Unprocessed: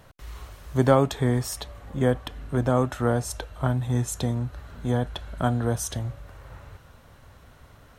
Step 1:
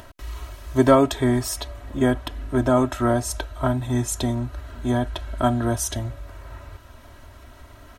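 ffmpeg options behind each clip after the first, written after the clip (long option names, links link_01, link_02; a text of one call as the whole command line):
ffmpeg -i in.wav -af "aecho=1:1:3.1:0.79,acompressor=mode=upward:threshold=-42dB:ratio=2.5,volume=2.5dB" out.wav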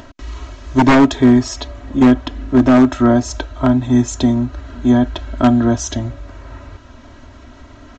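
ffmpeg -i in.wav -af "equalizer=frequency=260:width_type=o:width=0.66:gain=9,aresample=16000,aeval=exprs='0.398*(abs(mod(val(0)/0.398+3,4)-2)-1)':channel_layout=same,aresample=44100,volume=4.5dB" out.wav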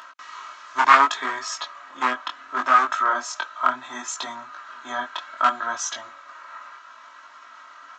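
ffmpeg -i in.wav -af "highpass=frequency=1200:width_type=q:width=3.8,flanger=delay=18:depth=5.8:speed=0.69,volume=-1dB" out.wav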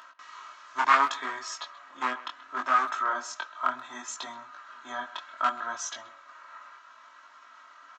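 ffmpeg -i in.wav -filter_complex "[0:a]asplit=2[link_01][link_02];[link_02]adelay=130,highpass=300,lowpass=3400,asoftclip=type=hard:threshold=-9dB,volume=-17dB[link_03];[link_01][link_03]amix=inputs=2:normalize=0,volume=-7dB" out.wav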